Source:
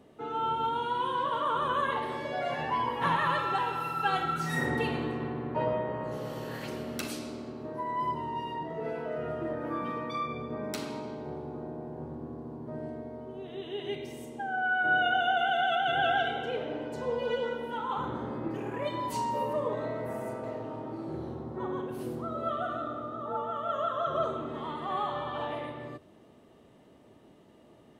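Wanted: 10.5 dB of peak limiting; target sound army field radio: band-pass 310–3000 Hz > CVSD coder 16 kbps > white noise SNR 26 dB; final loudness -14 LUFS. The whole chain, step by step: peak limiter -26 dBFS; band-pass 310–3000 Hz; CVSD coder 16 kbps; white noise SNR 26 dB; trim +22.5 dB

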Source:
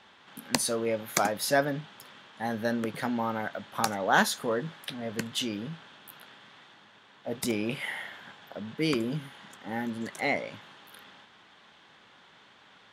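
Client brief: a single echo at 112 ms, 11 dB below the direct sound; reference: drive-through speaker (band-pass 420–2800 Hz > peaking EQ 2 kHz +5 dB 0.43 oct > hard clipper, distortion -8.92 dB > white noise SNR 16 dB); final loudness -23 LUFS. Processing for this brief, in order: band-pass 420–2800 Hz; peaking EQ 2 kHz +5 dB 0.43 oct; delay 112 ms -11 dB; hard clipper -23.5 dBFS; white noise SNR 16 dB; trim +10.5 dB

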